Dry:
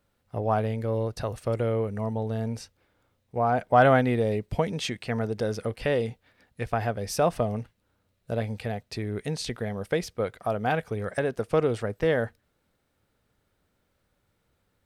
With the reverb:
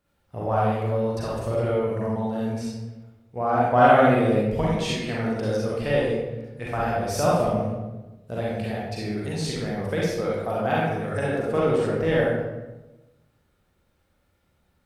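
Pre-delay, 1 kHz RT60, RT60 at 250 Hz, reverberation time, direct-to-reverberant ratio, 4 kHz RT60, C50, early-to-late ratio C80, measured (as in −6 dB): 36 ms, 1.0 s, 1.3 s, 1.1 s, −6.5 dB, 0.70 s, −1.5 dB, 2.0 dB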